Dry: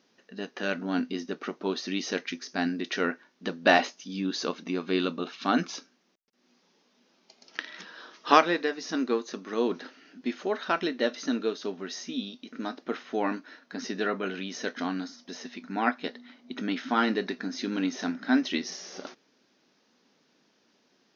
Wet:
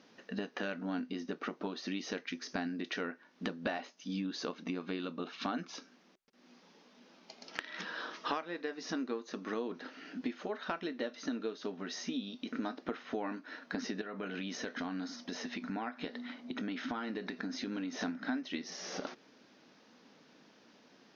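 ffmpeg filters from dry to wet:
ffmpeg -i in.wav -filter_complex "[0:a]asettb=1/sr,asplit=3[link_01][link_02][link_03];[link_01]atrim=end=14.014[link_04];[link_02]atrim=start=14.01:end=18.01,asetpts=PTS-STARTPTS,afade=type=in:duration=0.004:curve=qsin,afade=type=out:start_time=3.996:duration=0.004:curve=qsin,acompressor=threshold=-42dB:ratio=2.5:attack=3.2:release=140:knee=1:detection=peak[link_05];[link_03]atrim=start=18.006[link_06];[link_04][link_05]acrossfade=duration=0.004:curve1=hsin:curve2=qsin[link_07];[link_07][link_06]acrossfade=duration=0.004:curve1=qsin:curve2=hsin,acompressor=threshold=-41dB:ratio=8,aemphasis=mode=reproduction:type=cd,bandreject=frequency=380:width=12,volume=6.5dB" out.wav

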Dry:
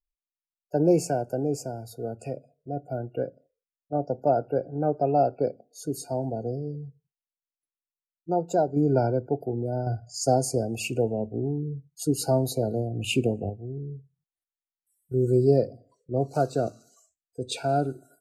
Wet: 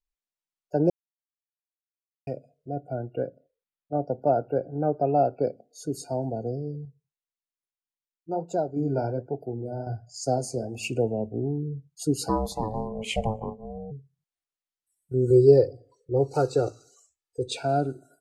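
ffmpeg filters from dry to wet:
ffmpeg -i in.wav -filter_complex "[0:a]asettb=1/sr,asplit=3[link_01][link_02][link_03];[link_01]atrim=end=2.804[link_04];[link_02]atrim=start=2.8:end=5.37,asetpts=PTS-STARTPTS,afade=type=in:duration=0.004:curve=qsin,afade=type=out:start_time=2.566:duration=0.004:curve=qsin,equalizer=frequency=6600:width_type=o:width=0.68:gain=-14[link_05];[link_03]atrim=start=5.366[link_06];[link_04][link_05]acrossfade=duration=0.004:curve1=hsin:curve2=qsin[link_07];[link_07][link_06]acrossfade=duration=0.004:curve1=qsin:curve2=hsin,asettb=1/sr,asplit=3[link_08][link_09][link_10];[link_08]atrim=end=6.854[link_11];[link_09]atrim=start=6.85:end=10.83,asetpts=PTS-STARTPTS,afade=type=in:duration=0.004:curve=qsin,afade=type=out:start_time=3.976:duration=0.004:curve=qsin,flanger=delay=4.7:depth=9.2:regen=-57:speed=1.2:shape=triangular[link_12];[link_10]atrim=start=10.826[link_13];[link_11][link_12]acrossfade=duration=0.004:curve1=hsin:curve2=qsin[link_14];[link_14][link_13]acrossfade=duration=0.004:curve1=qsin:curve2=hsin,asplit=3[link_15][link_16][link_17];[link_15]afade=type=out:start_time=12.28:duration=0.02[link_18];[link_16]aeval=exprs='val(0)*sin(2*PI*330*n/s)':channel_layout=same,afade=type=in:start_time=12.28:duration=0.02,afade=type=out:start_time=13.9:duration=0.02[link_19];[link_17]afade=type=in:start_time=13.9:duration=0.02[link_20];[link_18][link_19][link_20]amix=inputs=3:normalize=0,asettb=1/sr,asplit=3[link_21][link_22][link_23];[link_21]atrim=end=15.304[link_24];[link_22]atrim=start=15.3:end=17.48,asetpts=PTS-STARTPTS,afade=type=in:duration=0.004:curve=qsin,afade=type=out:start_time=2.176:duration=0.004:curve=qsin,aecho=1:1:2.3:0.98,atrim=end_sample=96138[link_25];[link_23]atrim=start=17.476[link_26];[link_24][link_25]acrossfade=duration=0.004:curve1=hsin:curve2=qsin[link_27];[link_27][link_26]acrossfade=duration=0.004:curve1=qsin:curve2=hsin,asplit=3[link_28][link_29][link_30];[link_28]atrim=end=0.9,asetpts=PTS-STARTPTS,afade=type=out:start_time=0.896:duration=0.004:curve=hsin[link_31];[link_29]atrim=start=0.9:end=2.27,asetpts=PTS-STARTPTS,volume=0[link_32];[link_30]atrim=start=2.27,asetpts=PTS-STARTPTS,afade=type=in:duration=0.004:curve=hsin[link_33];[link_31][link_32][link_33]concat=n=3:v=0:a=1,lowpass=9000" out.wav

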